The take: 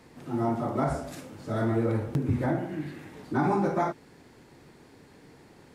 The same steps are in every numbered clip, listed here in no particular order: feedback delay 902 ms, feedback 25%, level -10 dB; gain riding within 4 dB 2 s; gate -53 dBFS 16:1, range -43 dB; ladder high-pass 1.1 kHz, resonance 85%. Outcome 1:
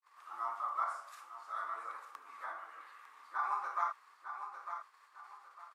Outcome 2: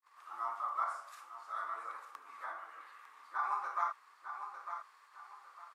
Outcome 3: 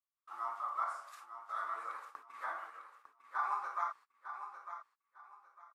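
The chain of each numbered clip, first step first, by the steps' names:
gate > feedback delay > gain riding > ladder high-pass; feedback delay > gate > gain riding > ladder high-pass; ladder high-pass > gate > gain riding > feedback delay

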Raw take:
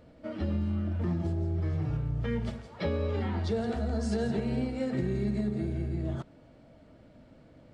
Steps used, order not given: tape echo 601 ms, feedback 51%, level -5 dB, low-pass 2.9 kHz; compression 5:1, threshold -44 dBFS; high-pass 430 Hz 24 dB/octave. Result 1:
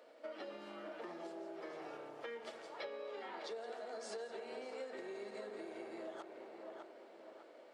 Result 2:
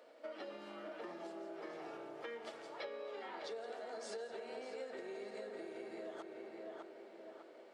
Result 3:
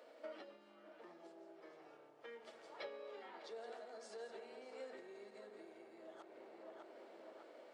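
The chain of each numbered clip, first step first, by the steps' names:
tape echo > high-pass > compression; high-pass > tape echo > compression; tape echo > compression > high-pass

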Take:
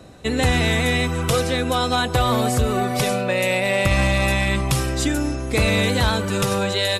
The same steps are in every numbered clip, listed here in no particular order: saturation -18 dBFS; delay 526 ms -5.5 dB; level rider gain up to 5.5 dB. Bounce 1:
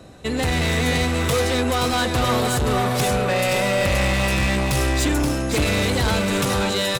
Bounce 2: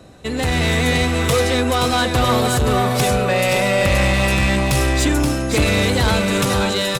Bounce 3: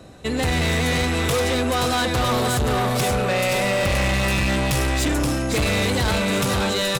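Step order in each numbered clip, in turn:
level rider > saturation > delay; saturation > level rider > delay; level rider > delay > saturation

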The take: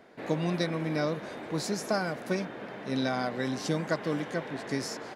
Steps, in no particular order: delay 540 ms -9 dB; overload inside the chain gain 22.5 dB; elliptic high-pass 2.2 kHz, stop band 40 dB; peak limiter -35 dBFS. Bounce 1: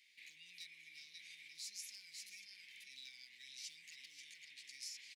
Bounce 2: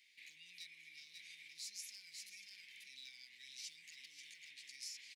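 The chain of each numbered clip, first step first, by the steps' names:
delay > overload inside the chain > peak limiter > elliptic high-pass; overload inside the chain > delay > peak limiter > elliptic high-pass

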